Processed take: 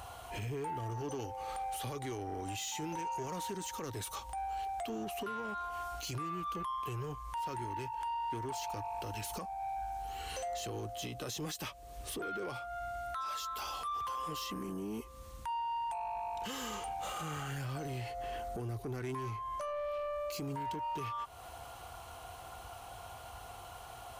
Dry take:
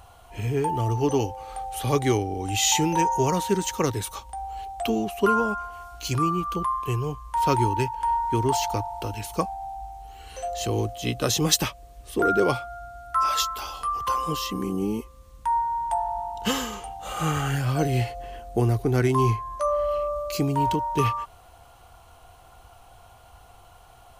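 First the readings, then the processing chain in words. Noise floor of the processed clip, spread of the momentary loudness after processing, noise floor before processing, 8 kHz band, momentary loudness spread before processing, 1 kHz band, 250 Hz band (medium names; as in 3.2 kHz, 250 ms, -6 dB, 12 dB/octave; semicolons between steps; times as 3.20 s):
-50 dBFS, 10 LU, -51 dBFS, -15.0 dB, 12 LU, -11.5 dB, -16.0 dB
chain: high-pass 48 Hz; bass shelf 330 Hz -4 dB; compression 3:1, threshold -40 dBFS, peak gain reduction 18 dB; peak limiter -33.5 dBFS, peak gain reduction 10.5 dB; saturation -37.5 dBFS, distortion -17 dB; trim +4.5 dB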